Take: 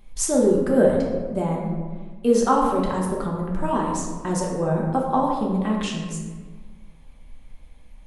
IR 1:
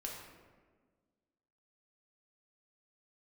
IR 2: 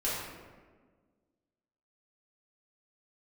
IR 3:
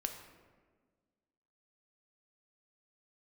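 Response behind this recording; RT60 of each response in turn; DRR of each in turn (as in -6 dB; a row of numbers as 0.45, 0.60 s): 1; 1.5, 1.5, 1.5 s; -2.5, -9.5, 4.5 dB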